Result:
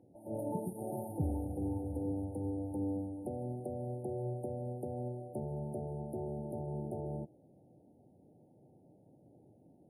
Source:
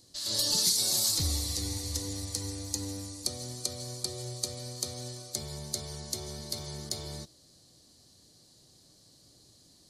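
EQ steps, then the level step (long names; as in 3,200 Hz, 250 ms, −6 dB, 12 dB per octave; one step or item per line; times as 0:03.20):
high-pass filter 140 Hz 12 dB per octave
linear-phase brick-wall band-stop 920–8,800 Hz
high-frequency loss of the air 440 metres
+5.5 dB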